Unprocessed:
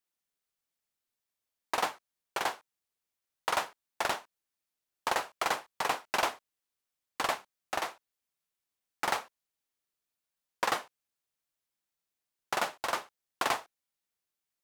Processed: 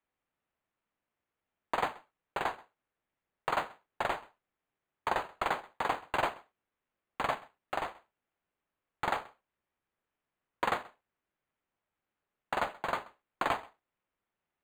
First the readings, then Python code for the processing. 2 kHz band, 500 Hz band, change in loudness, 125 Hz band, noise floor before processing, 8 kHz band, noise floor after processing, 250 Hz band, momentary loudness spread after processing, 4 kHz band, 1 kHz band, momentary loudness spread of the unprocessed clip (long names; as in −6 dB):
−2.0 dB, 0.0 dB, −1.5 dB, +5.0 dB, below −85 dBFS, −13.5 dB, below −85 dBFS, +1.0 dB, 10 LU, −7.0 dB, −0.5 dB, 7 LU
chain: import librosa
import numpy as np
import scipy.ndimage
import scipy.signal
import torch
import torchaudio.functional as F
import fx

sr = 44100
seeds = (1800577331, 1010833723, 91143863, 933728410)

y = x + 10.0 ** (-23.0 / 20.0) * np.pad(x, (int(131 * sr / 1000.0), 0))[:len(x)]
y = np.interp(np.arange(len(y)), np.arange(len(y))[::8], y[::8])